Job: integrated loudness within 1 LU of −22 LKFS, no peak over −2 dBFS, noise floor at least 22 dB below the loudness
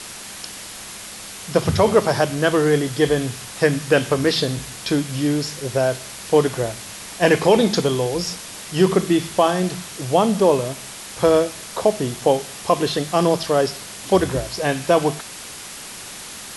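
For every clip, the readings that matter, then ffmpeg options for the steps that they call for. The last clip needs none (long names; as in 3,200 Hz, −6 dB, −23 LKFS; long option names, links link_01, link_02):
background noise floor −36 dBFS; target noise floor −42 dBFS; integrated loudness −20.0 LKFS; sample peak −3.5 dBFS; target loudness −22.0 LKFS
→ -af "afftdn=noise_reduction=6:noise_floor=-36"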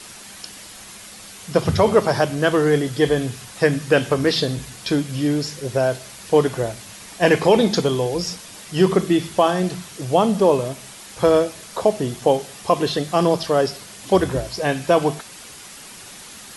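background noise floor −40 dBFS; target noise floor −42 dBFS
→ -af "afftdn=noise_reduction=6:noise_floor=-40"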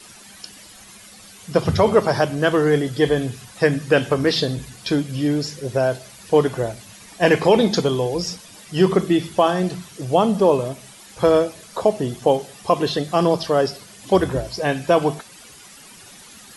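background noise floor −44 dBFS; integrated loudness −20.0 LKFS; sample peak −4.0 dBFS; target loudness −22.0 LKFS
→ -af "volume=-2dB"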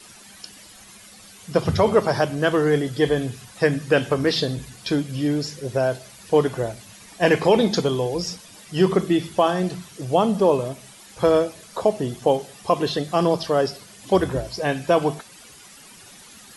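integrated loudness −22.0 LKFS; sample peak −6.0 dBFS; background noise floor −46 dBFS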